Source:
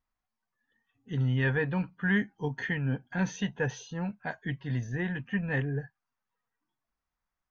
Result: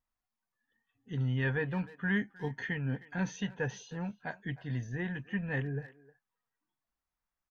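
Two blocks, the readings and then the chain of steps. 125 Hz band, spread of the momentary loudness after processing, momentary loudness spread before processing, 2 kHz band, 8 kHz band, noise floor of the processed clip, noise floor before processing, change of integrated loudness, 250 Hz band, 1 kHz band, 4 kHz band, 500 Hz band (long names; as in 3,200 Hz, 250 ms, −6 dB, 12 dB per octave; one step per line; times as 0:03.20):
−4.0 dB, 9 LU, 9 LU, −4.0 dB, can't be measured, below −85 dBFS, below −85 dBFS, −4.0 dB, −4.0 dB, −4.0 dB, −4.0 dB, −4.0 dB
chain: far-end echo of a speakerphone 310 ms, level −18 dB
level −4 dB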